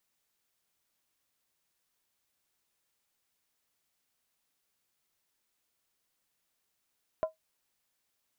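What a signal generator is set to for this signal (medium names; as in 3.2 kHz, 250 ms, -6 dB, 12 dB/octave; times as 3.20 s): skin hit, lowest mode 637 Hz, decay 0.14 s, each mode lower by 11 dB, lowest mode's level -22 dB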